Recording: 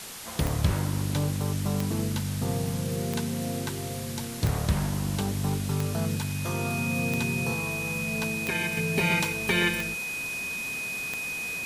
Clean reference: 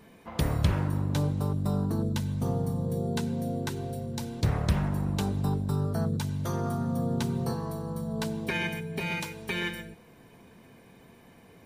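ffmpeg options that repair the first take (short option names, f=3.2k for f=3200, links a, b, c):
-af "adeclick=t=4,bandreject=f=2.5k:w=30,afwtdn=0.011,asetnsamples=n=441:p=0,asendcmd='8.77 volume volume -7dB',volume=0dB"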